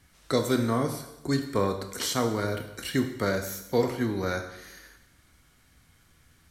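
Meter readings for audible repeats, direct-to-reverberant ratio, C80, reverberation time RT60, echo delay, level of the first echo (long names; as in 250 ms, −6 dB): no echo audible, 5.5 dB, 10.5 dB, 0.90 s, no echo audible, no echo audible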